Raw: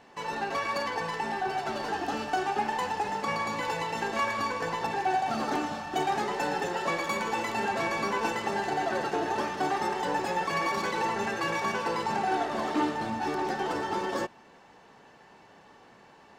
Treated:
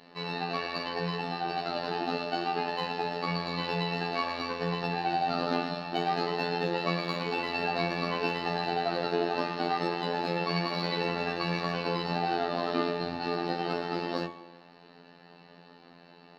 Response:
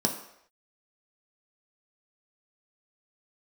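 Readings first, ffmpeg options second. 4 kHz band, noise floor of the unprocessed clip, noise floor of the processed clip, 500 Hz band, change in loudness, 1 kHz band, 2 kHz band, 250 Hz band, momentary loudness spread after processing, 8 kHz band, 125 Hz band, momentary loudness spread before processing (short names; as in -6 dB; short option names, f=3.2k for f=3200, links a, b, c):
+3.5 dB, -55 dBFS, -55 dBFS, +0.5 dB, -1.0 dB, -3.0 dB, -3.0 dB, +1.0 dB, 3 LU, under -10 dB, +6.0 dB, 3 LU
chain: -filter_complex "[0:a]asplit=2[a][b];[1:a]atrim=start_sample=2205,asetrate=32634,aresample=44100[c];[b][c]afir=irnorm=-1:irlink=0,volume=-14.5dB[d];[a][d]amix=inputs=2:normalize=0,afftfilt=real='hypot(re,im)*cos(PI*b)':imag='0':win_size=2048:overlap=0.75,highshelf=f=5.6k:t=q:w=3:g=-11,bandreject=f=124.4:t=h:w=4,bandreject=f=248.8:t=h:w=4,bandreject=f=373.2:t=h:w=4,bandreject=f=497.6:t=h:w=4,bandreject=f=622:t=h:w=4,bandreject=f=746.4:t=h:w=4,bandreject=f=870.8:t=h:w=4,bandreject=f=995.2:t=h:w=4,bandreject=f=1.1196k:t=h:w=4,bandreject=f=1.244k:t=h:w=4,bandreject=f=1.3684k:t=h:w=4,bandreject=f=1.4928k:t=h:w=4,bandreject=f=1.6172k:t=h:w=4,bandreject=f=1.7416k:t=h:w=4,bandreject=f=1.866k:t=h:w=4,bandreject=f=1.9904k:t=h:w=4,bandreject=f=2.1148k:t=h:w=4,bandreject=f=2.2392k:t=h:w=4,bandreject=f=2.3636k:t=h:w=4,bandreject=f=2.488k:t=h:w=4"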